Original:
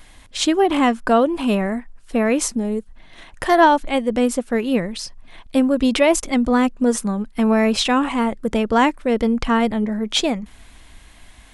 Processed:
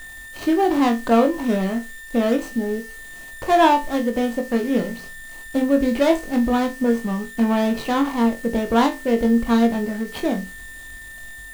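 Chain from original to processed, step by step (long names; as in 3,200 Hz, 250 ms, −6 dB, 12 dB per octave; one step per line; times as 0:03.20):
running median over 25 samples
hum removal 88.37 Hz, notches 6
steady tone 1,800 Hz −36 dBFS
bit reduction 7 bits
flutter between parallel walls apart 3.7 metres, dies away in 0.23 s
every ending faded ahead of time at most 240 dB per second
level −1.5 dB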